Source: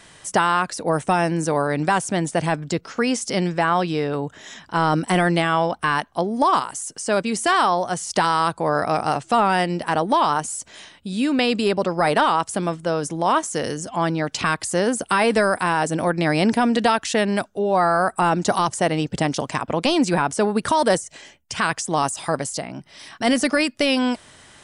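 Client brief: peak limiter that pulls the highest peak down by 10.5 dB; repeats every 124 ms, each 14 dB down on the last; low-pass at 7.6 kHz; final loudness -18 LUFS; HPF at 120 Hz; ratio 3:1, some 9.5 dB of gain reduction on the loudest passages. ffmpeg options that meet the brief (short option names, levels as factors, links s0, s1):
-af "highpass=120,lowpass=7600,acompressor=threshold=0.0447:ratio=3,alimiter=limit=0.0841:level=0:latency=1,aecho=1:1:124|248:0.2|0.0399,volume=5.01"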